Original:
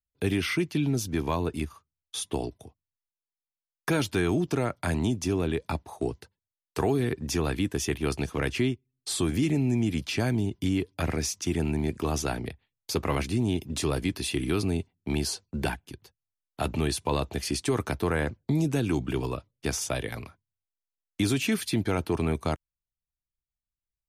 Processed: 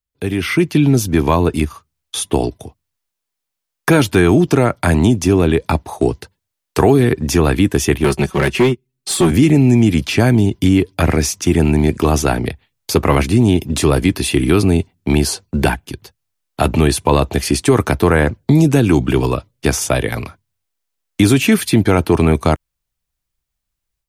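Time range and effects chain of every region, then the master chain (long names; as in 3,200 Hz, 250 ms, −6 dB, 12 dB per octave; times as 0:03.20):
0:08.04–0:09.31: comb filter 5.3 ms, depth 94% + gain into a clipping stage and back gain 21.5 dB + expander for the loud parts, over −40 dBFS
whole clip: dynamic equaliser 4,800 Hz, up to −5 dB, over −44 dBFS, Q 0.8; automatic gain control gain up to 9.5 dB; level +5 dB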